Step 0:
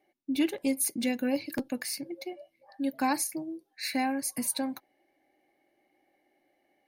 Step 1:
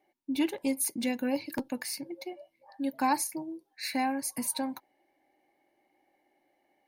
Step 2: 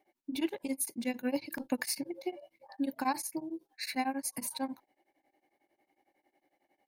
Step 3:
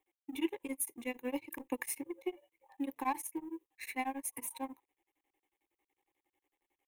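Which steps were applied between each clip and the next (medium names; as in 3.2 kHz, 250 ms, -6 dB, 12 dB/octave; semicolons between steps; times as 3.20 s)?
peaking EQ 930 Hz +11 dB 0.25 oct; trim -1.5 dB
gain riding within 5 dB 0.5 s; tremolo of two beating tones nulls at 11 Hz
companding laws mixed up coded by A; static phaser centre 960 Hz, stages 8; trim +1 dB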